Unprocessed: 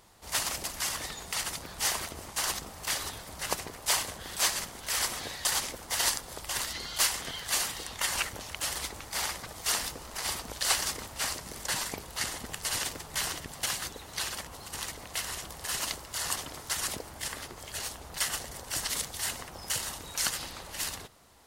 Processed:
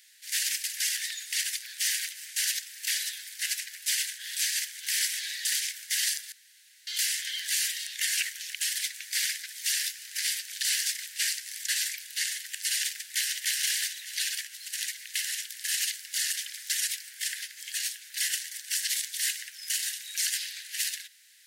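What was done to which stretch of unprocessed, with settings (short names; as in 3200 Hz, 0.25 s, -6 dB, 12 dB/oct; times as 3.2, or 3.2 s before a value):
6.32–6.87 room tone
13.11–13.56 echo throw 0.3 s, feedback 40%, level -0.5 dB
whole clip: steep high-pass 1600 Hz 96 dB/oct; limiter -22.5 dBFS; gain +5.5 dB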